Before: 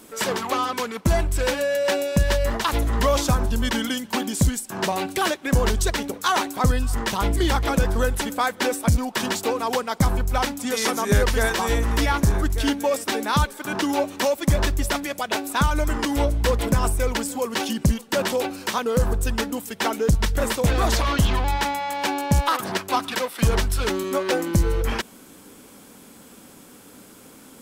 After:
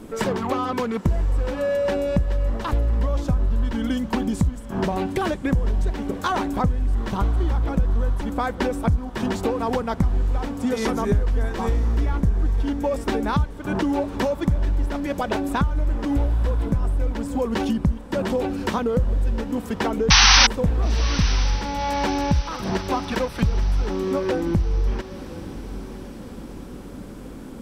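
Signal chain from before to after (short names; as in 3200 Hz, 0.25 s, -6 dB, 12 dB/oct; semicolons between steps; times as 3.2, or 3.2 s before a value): tilt -3.5 dB/oct; compressor 5:1, threshold -24 dBFS, peak gain reduction 21 dB; painted sound noise, 20.1–20.47, 730–6200 Hz -17 dBFS; diffused feedback echo 0.974 s, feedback 54%, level -15 dB; gain +3.5 dB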